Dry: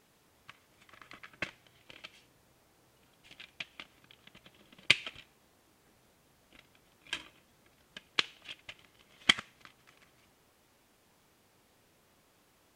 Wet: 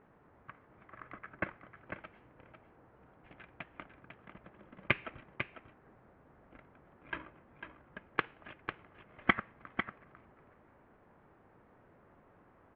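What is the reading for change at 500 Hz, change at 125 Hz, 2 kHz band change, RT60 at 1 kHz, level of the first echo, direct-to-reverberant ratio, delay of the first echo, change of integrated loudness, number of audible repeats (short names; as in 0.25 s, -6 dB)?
+6.0 dB, +6.0 dB, -1.5 dB, none, -8.0 dB, none, 0.498 s, -6.5 dB, 1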